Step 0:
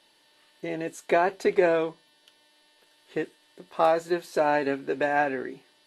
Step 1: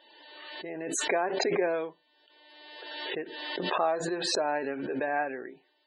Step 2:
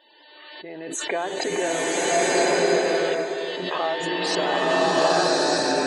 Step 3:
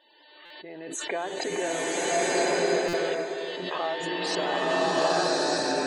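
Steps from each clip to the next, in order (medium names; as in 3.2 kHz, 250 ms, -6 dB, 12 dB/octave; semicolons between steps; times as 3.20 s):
tone controls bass -7 dB, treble -7 dB; loudest bins only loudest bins 64; swell ahead of each attack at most 34 dB/s; trim -6 dB
swelling reverb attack 1310 ms, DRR -8 dB; trim +1 dB
buffer glitch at 0.45/2.88 s, samples 256, times 8; trim -4.5 dB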